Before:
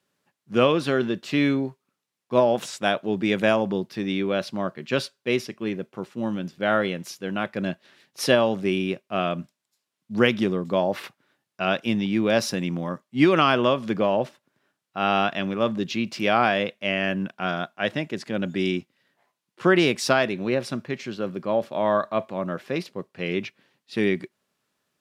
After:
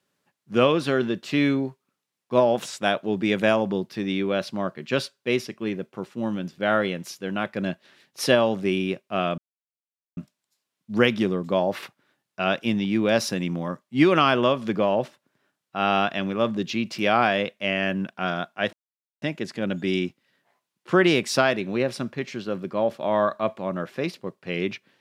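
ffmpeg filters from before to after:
-filter_complex "[0:a]asplit=3[a][b][c];[a]atrim=end=9.38,asetpts=PTS-STARTPTS,afade=t=out:st=9.376:d=0.004:c=hsin,apad=pad_dur=0.79[d];[b]atrim=start=9.38:end=17.94,asetpts=PTS-STARTPTS,afade=t=in:d=0.004:c=hsin,afade=t=out:st=8.556:d=0.004:c=hsin,apad=pad_dur=0.49[e];[c]atrim=start=17.94,asetpts=PTS-STARTPTS,afade=t=in:d=0.004:c=hsin[f];[d][e][f]concat=n=3:v=0:a=1"

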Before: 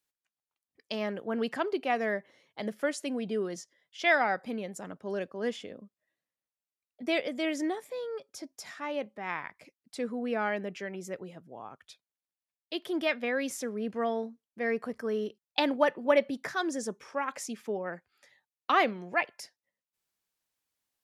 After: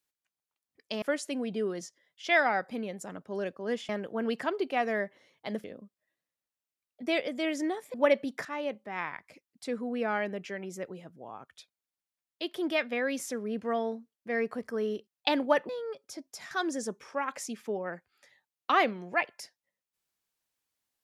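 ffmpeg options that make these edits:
-filter_complex "[0:a]asplit=8[a][b][c][d][e][f][g][h];[a]atrim=end=1.022[i];[b]atrim=start=2.768:end=5.642[j];[c]atrim=start=1.018:end=2.772[k];[d]atrim=start=5.638:end=7.942[l];[e]atrim=start=15.998:end=16.512[m];[f]atrim=start=8.758:end=16.002[n];[g]atrim=start=7.938:end=8.762[o];[h]atrim=start=16.508[p];[i][j]acrossfade=d=0.004:c1=hsin:c2=hsin[q];[q][k]acrossfade=d=0.004:c1=hsin:c2=hsin[r];[r][l]acrossfade=d=0.004:c1=hsin:c2=hsin[s];[s][m]acrossfade=d=0.004:c1=hsin:c2=hsin[t];[t][n]acrossfade=d=0.004:c1=hsin:c2=hsin[u];[u][o]acrossfade=d=0.004:c1=hsin:c2=hsin[v];[v][p]acrossfade=d=0.004:c1=hsin:c2=hsin"

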